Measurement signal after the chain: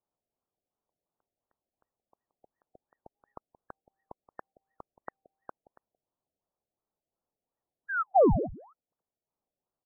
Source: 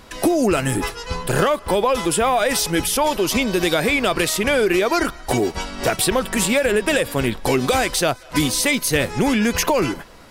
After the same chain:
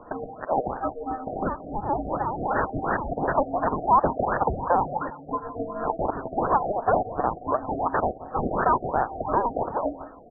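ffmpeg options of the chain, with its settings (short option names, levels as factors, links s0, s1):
-filter_complex "[0:a]aexciter=amount=9.9:drive=3:freq=2300,equalizer=f=740:w=2.9:g=-14,asplit=2[s0][s1];[s1]acompressor=threshold=0.178:ratio=10,volume=1.41[s2];[s0][s2]amix=inputs=2:normalize=0,aeval=exprs='(mod(0.531*val(0)+1,2)-1)/0.531':c=same,aderivative,asplit=2[s3][s4];[s4]aecho=0:1:175:0.158[s5];[s3][s5]amix=inputs=2:normalize=0,lowpass=f=2800:t=q:w=0.5098,lowpass=f=2800:t=q:w=0.6013,lowpass=f=2800:t=q:w=0.9,lowpass=f=2800:t=q:w=2.563,afreqshift=-3300,afftfilt=real='re*lt(b*sr/1024,740*pow(1900/740,0.5+0.5*sin(2*PI*2.8*pts/sr)))':imag='im*lt(b*sr/1024,740*pow(1900/740,0.5+0.5*sin(2*PI*2.8*pts/sr)))':win_size=1024:overlap=0.75"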